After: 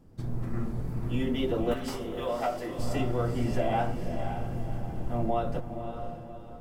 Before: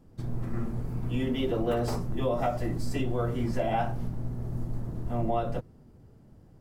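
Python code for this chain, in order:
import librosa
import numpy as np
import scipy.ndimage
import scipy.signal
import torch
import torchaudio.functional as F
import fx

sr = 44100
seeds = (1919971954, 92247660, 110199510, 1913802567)

y = fx.highpass(x, sr, hz=fx.line((1.73, 1300.0), (2.77, 320.0)), slope=12, at=(1.73, 2.77), fade=0.02)
y = fx.echo_diffused(y, sr, ms=543, feedback_pct=43, wet_db=-7.5)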